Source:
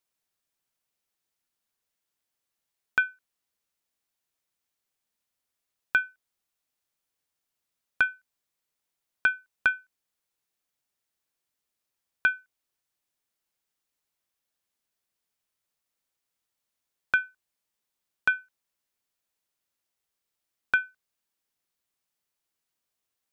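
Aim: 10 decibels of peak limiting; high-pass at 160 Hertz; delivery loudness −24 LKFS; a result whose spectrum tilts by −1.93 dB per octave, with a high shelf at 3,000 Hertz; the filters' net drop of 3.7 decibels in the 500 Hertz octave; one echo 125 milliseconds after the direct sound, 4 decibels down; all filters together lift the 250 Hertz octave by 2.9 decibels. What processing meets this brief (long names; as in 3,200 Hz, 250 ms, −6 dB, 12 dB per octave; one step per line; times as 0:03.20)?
high-pass filter 160 Hz
parametric band 250 Hz +7 dB
parametric band 500 Hz −7 dB
high-shelf EQ 3,000 Hz +7 dB
brickwall limiter −19 dBFS
single-tap delay 125 ms −4 dB
level +8 dB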